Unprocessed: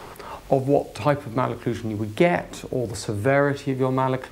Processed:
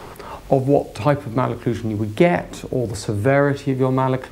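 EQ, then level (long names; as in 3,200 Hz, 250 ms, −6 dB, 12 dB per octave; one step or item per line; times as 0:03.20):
low-shelf EQ 420 Hz +4 dB
+1.5 dB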